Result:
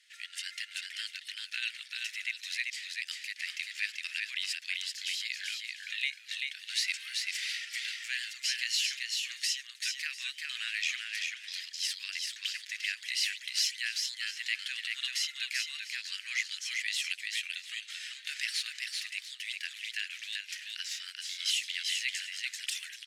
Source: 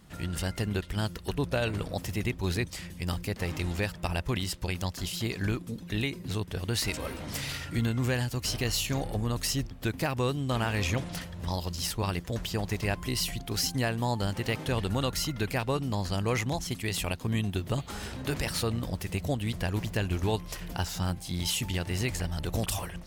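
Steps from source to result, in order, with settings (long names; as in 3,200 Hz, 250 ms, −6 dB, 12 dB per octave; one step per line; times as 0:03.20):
Butterworth high-pass 1,800 Hz 48 dB per octave
high-frequency loss of the air 66 metres
multi-tap delay 388/694 ms −3.5/−15.5 dB
level +3.5 dB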